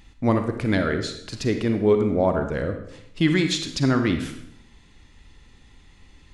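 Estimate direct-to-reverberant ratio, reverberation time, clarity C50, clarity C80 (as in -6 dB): 6.5 dB, 0.75 s, 7.5 dB, 9.5 dB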